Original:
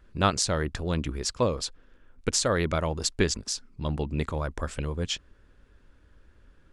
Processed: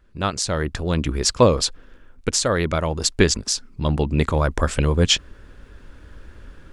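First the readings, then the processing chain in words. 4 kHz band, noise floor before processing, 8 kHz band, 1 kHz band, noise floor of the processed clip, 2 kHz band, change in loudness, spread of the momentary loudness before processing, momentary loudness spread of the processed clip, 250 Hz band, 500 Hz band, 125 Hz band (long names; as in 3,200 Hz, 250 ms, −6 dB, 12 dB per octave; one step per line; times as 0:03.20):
+8.5 dB, −59 dBFS, +6.5 dB, +5.5 dB, −48 dBFS, +7.0 dB, +7.5 dB, 9 LU, 8 LU, +7.5 dB, +8.0 dB, +8.0 dB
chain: automatic gain control gain up to 16 dB
level −1 dB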